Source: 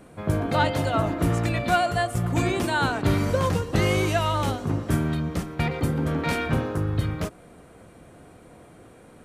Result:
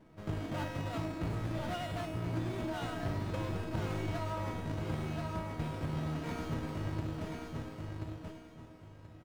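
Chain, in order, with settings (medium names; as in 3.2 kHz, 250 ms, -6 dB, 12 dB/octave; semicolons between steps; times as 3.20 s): square wave that keeps the level; low-pass 2.5 kHz 6 dB/octave; bass shelf 83 Hz -8.5 dB; feedback comb 320 Hz, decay 0.8 s, mix 90%; on a send: feedback delay 1031 ms, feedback 24%, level -5.5 dB; on the sum: compression 2.5:1, threshold -37 dBFS, peak gain reduction 5 dB; bass shelf 180 Hz +9 dB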